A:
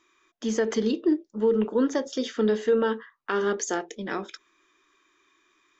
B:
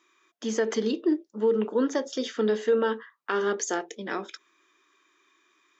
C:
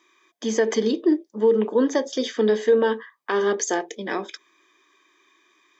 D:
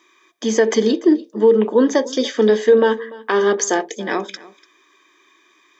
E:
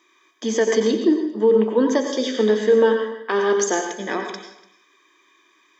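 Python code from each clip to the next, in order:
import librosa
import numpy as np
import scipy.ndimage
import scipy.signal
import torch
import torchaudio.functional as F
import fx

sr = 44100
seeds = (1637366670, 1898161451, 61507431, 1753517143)

y1 = scipy.signal.sosfilt(scipy.signal.bessel(2, 230.0, 'highpass', norm='mag', fs=sr, output='sos'), x)
y2 = fx.notch_comb(y1, sr, f0_hz=1400.0)
y2 = F.gain(torch.from_numpy(y2), 5.5).numpy()
y3 = y2 + 10.0 ** (-20.5 / 20.0) * np.pad(y2, (int(292 * sr / 1000.0), 0))[:len(y2)]
y3 = F.gain(torch.from_numpy(y3), 5.5).numpy()
y4 = fx.rev_plate(y3, sr, seeds[0], rt60_s=0.54, hf_ratio=0.95, predelay_ms=80, drr_db=5.0)
y4 = F.gain(torch.from_numpy(y4), -4.0).numpy()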